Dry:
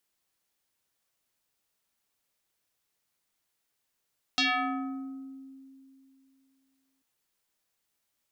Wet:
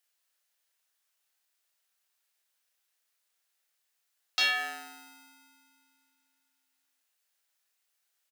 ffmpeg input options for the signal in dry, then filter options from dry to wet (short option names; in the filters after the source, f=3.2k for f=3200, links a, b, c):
-f lavfi -i "aevalsrc='0.0841*pow(10,-3*t/2.82)*sin(2*PI*268*t+5*pow(10,-3*t/1.42)*sin(2*PI*3.75*268*t))':d=2.64:s=44100"
-filter_complex "[0:a]asplit=2[a][b];[b]acrusher=samples=38:mix=1:aa=0.000001,volume=-5dB[c];[a][c]amix=inputs=2:normalize=0,highpass=1.2k,asplit=2[d][e];[e]adelay=31,volume=-5dB[f];[d][f]amix=inputs=2:normalize=0"